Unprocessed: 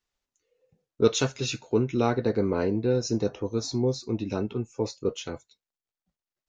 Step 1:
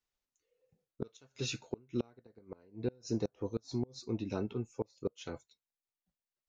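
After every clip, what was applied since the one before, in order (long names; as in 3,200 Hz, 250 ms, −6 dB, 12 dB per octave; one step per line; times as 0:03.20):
gate with flip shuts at −15 dBFS, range −30 dB
level −7 dB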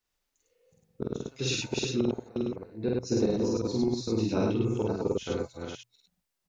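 delay that plays each chunk backwards 273 ms, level −3.5 dB
mains-hum notches 60/120 Hz
loudspeakers that aren't time-aligned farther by 16 metres −1 dB, 35 metres −1 dB
level +4.5 dB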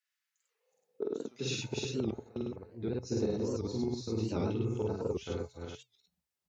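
high-pass filter sweep 1,700 Hz → 75 Hz, 0:00.30–0:01.88
tuned comb filter 430 Hz, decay 0.16 s, harmonics all, mix 60%
wow of a warped record 78 rpm, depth 160 cents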